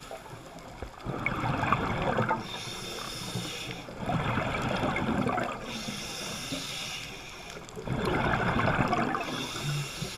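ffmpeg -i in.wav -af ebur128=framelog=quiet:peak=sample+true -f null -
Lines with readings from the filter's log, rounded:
Integrated loudness:
  I:         -31.2 LUFS
  Threshold: -41.5 LUFS
Loudness range:
  LRA:         2.7 LU
  Threshold: -51.7 LUFS
  LRA low:   -33.3 LUFS
  LRA high:  -30.5 LUFS
Sample peak:
  Peak:       -9.2 dBFS
True peak:
  Peak:       -9.2 dBFS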